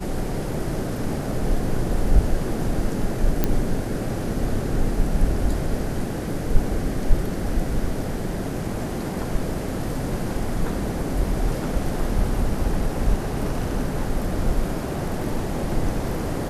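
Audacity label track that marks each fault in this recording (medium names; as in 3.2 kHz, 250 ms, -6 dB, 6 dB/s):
3.440000	3.440000	pop -6 dBFS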